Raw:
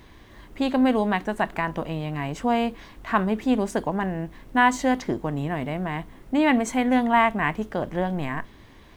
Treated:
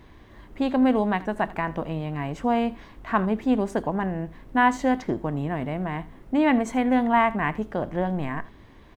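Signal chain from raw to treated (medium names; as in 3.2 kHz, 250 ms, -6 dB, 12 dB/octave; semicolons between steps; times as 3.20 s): treble shelf 2.7 kHz -8.5 dB; delay 81 ms -19.5 dB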